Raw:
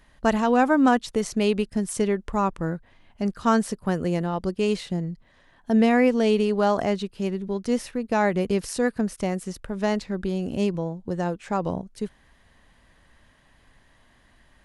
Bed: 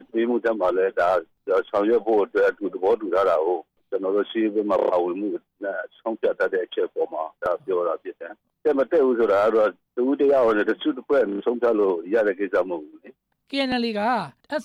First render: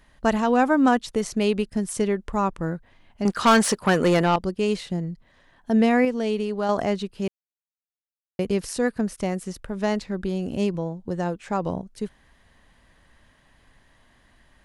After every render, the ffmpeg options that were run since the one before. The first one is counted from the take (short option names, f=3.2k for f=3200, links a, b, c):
-filter_complex "[0:a]asettb=1/sr,asplit=3[a][b][c];[a]atrim=end=3.254[d];[b]atrim=start=3.25:end=4.36,asetpts=PTS-STARTPTS,afade=t=in:d=0.004:c=qsin,afade=t=out:st=1.106:d=0.004:c=qsin,asplit=2[e][f];[f]highpass=f=720:p=1,volume=22dB,asoftclip=type=tanh:threshold=-8.5dB[g];[e][g]amix=inputs=2:normalize=0,lowpass=f=7k:p=1,volume=-6dB[h];[c]atrim=start=4.356[i];[d][h]acrossfade=d=0.004:c1=hsin:c2=qsin[j];[j][i]acrossfade=d=0.004:c1=qsin:c2=hsin,asplit=5[k][l][m][n][o];[k]atrim=end=6.052[p];[l]atrim=start=6.048:end=6.692,asetpts=PTS-STARTPTS,volume=-4.5dB[q];[m]atrim=start=6.688:end=7.28,asetpts=PTS-STARTPTS,afade=t=out:st=0.588:d=0.004:c=hsin[r];[n]atrim=start=7.28:end=8.39,asetpts=PTS-STARTPTS,volume=0[s];[o]atrim=start=8.39,asetpts=PTS-STARTPTS,afade=t=in:d=0.004:c=hsin[t];[p][q]acrossfade=d=0.004:c1=hsin:c2=hsin[u];[r][s][t]concat=n=3:v=0:a=1[v];[u][v]acrossfade=d=0.004:c1=hsin:c2=hsin"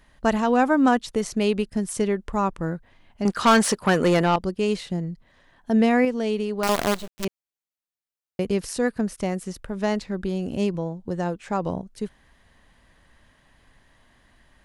-filter_complex "[0:a]asettb=1/sr,asplit=3[a][b][c];[a]atrim=end=6.634[d];[b]atrim=start=6.63:end=7.25,asetpts=PTS-STARTPTS,afade=t=in:d=0.004:c=qsin,afade=t=out:st=0.616:d=0.004:c=qsin,acrusher=bits=4:dc=4:mix=0:aa=0.000001[e];[c]atrim=start=7.246[f];[d][e]acrossfade=d=0.004:c1=hsin:c2=qsin[g];[g][f]acrossfade=d=0.004:c1=qsin:c2=hsin"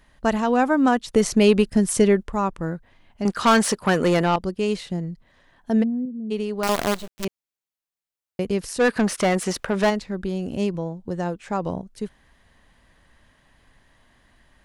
-filter_complex "[0:a]asettb=1/sr,asplit=3[a][b][c];[a]atrim=end=1.144[d];[b]atrim=start=1.14:end=2.23,asetpts=PTS-STARTPTS,afade=t=in:d=0.004:c=qsin,afade=t=out:st=1.086:d=0.004:c=qsin,acontrast=81[e];[c]atrim=start=2.226[f];[d][e]acrossfade=d=0.004:c1=hsin:c2=qsin[g];[g][f]acrossfade=d=0.004:c1=qsin:c2=hsin,asplit=3[h][i][j];[h]afade=t=out:st=5.82:d=0.02[k];[i]asuperpass=centerf=170:order=4:qfactor=1.5,afade=t=in:st=5.82:d=0.02,afade=t=out:st=6.3:d=0.02[l];[j]afade=t=in:st=6.3:d=0.02[m];[k][l][m]amix=inputs=3:normalize=0,asplit=3[n][o][p];[n]afade=t=out:st=8.79:d=0.02[q];[o]asplit=2[r][s];[s]highpass=f=720:p=1,volume=24dB,asoftclip=type=tanh:threshold=-10dB[t];[r][t]amix=inputs=2:normalize=0,lowpass=f=4.1k:p=1,volume=-6dB,afade=t=in:st=8.79:d=0.02,afade=t=out:st=9.89:d=0.02[u];[p]afade=t=in:st=9.89:d=0.02[v];[q][u][v]amix=inputs=3:normalize=0"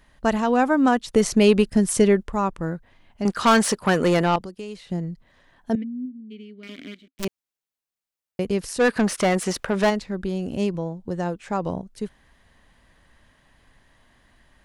-filter_complex "[0:a]asettb=1/sr,asplit=3[a][b][c];[a]atrim=end=4.404[d];[b]atrim=start=4.4:end=4.89,asetpts=PTS-STARTPTS,afade=t=in:d=0.004:c=qsin,afade=t=out:st=0.486:d=0.004:c=qsin,acrossover=split=120|510|4000[e][f][g][h];[e]acompressor=threshold=-57dB:ratio=3[i];[f]acompressor=threshold=-39dB:ratio=3[j];[g]acompressor=threshold=-46dB:ratio=3[k];[h]acompressor=threshold=-55dB:ratio=3[l];[i][j][k][l]amix=inputs=4:normalize=0[m];[c]atrim=start=4.886[n];[d][m]acrossfade=d=0.004:c1=hsin:c2=qsin[o];[o][n]acrossfade=d=0.004:c1=qsin:c2=hsin,asettb=1/sr,asplit=3[p][q][r];[p]atrim=end=5.754[s];[q]atrim=start=5.75:end=7.19,asetpts=PTS-STARTPTS,afade=t=in:d=0.004:c=qsin,afade=t=out:st=1.436:d=0.004:c=qsin,asplit=3[t][u][v];[t]bandpass=f=270:t=q:w=8,volume=0dB[w];[u]bandpass=f=2.29k:t=q:w=8,volume=-6dB[x];[v]bandpass=f=3.01k:t=q:w=8,volume=-9dB[y];[w][x][y]amix=inputs=3:normalize=0[z];[r]atrim=start=7.186[aa];[s][z]acrossfade=d=0.004:c1=hsin:c2=qsin[ab];[ab][aa]acrossfade=d=0.004:c1=qsin:c2=hsin"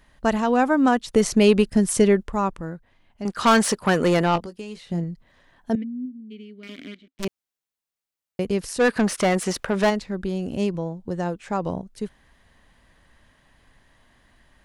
-filter_complex "[0:a]asettb=1/sr,asplit=3[a][b][c];[a]atrim=end=4.334[d];[b]atrim=start=4.33:end=5.04,asetpts=PTS-STARTPTS,afade=t=in:d=0.004:c=qsin,afade=t=out:st=0.706:d=0.004:c=qsin,asplit=2[e][f];[f]adelay=18,volume=-9.5dB[g];[e][g]amix=inputs=2:normalize=0,atrim=end_sample=31311[h];[c]atrim=start=5.036[i];[d][h]acrossfade=d=0.004:c1=hsin:c2=qsin[j];[j][i]acrossfade=d=0.004:c1=qsin:c2=hsin,asettb=1/sr,asplit=3[k][l][m];[k]atrim=end=6.874[n];[l]atrim=start=6.87:end=7.27,asetpts=PTS-STARTPTS,afade=t=in:d=0.004:c=qsin,afade=t=out:st=0.396:d=0.004:c=qsin,adynamicsmooth=sensitivity=8:basefreq=5.9k[o];[m]atrim=start=7.266[p];[n][o]acrossfade=d=0.004:c1=hsin:c2=qsin[q];[q][p]acrossfade=d=0.004:c1=qsin:c2=hsin,asplit=3[r][s][t];[r]atrim=end=2.612[u];[s]atrim=start=2.608:end=3.382,asetpts=PTS-STARTPTS,volume=-5dB[v];[t]atrim=start=3.378[w];[u][v]acrossfade=d=0.004:c1=hsin:c2=hsin[x];[x][w]acrossfade=d=0.004:c1=hsin:c2=hsin"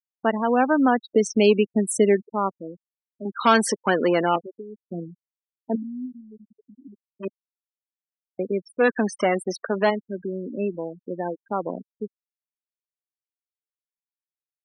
-af "highpass=f=220:w=0.5412,highpass=f=220:w=1.3066,afftfilt=real='re*gte(hypot(re,im),0.0708)':imag='im*gte(hypot(re,im),0.0708)':win_size=1024:overlap=0.75"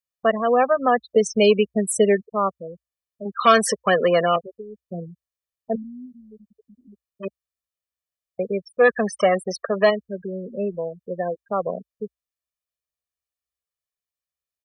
-af "equalizer=f=60:t=o:w=0.4:g=14,aecho=1:1:1.7:0.96"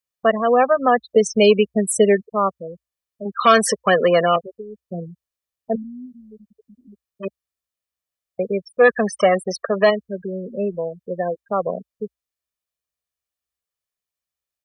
-af "volume=2.5dB,alimiter=limit=-3dB:level=0:latency=1"